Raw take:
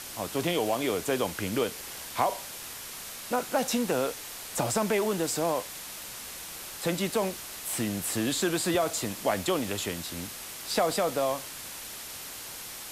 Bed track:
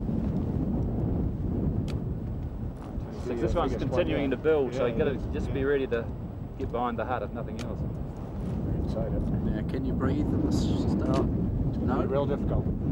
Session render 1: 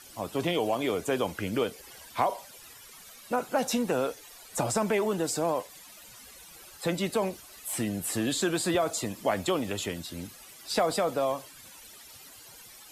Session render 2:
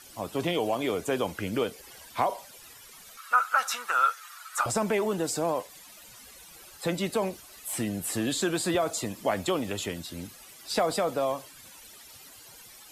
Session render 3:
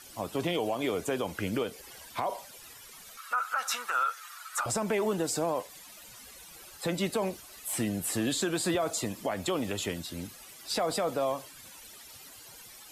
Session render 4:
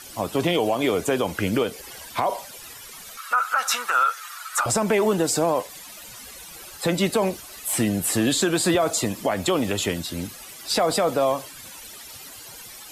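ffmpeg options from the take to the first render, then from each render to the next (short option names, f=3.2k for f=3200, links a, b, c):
-af "afftdn=nr=14:nf=-41"
-filter_complex "[0:a]asettb=1/sr,asplit=3[a][b][c];[a]atrim=end=3.174[d];[b]atrim=start=3.17:end=4.66,asetpts=PTS-STARTPTS,afade=t=in:d=0.004:c=qsin,afade=t=out:st=1.486:d=0.004:c=qsin,highpass=f=1.3k:t=q:w=9.8[e];[c]atrim=start=4.656[f];[d][e]acrossfade=d=0.004:c1=hsin:c2=qsin[g];[g][f]acrossfade=d=0.004:c1=qsin:c2=hsin"
-af "alimiter=limit=-20dB:level=0:latency=1:release=128"
-af "volume=8.5dB"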